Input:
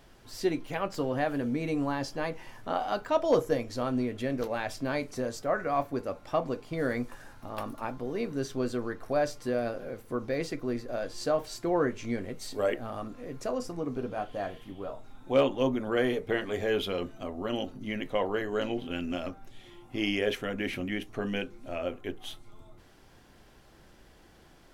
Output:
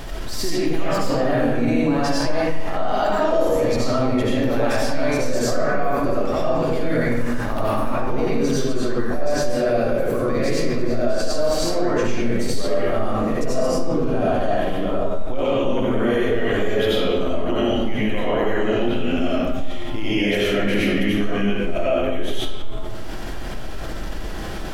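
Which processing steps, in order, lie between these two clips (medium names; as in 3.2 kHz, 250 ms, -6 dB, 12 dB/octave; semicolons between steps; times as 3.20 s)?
bass shelf 63 Hz +8.5 dB; peak limiter -28.5 dBFS, peak gain reduction 14.5 dB; reverberation RT60 1.4 s, pre-delay 50 ms, DRR -9 dB; level flattener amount 50%; trim +1.5 dB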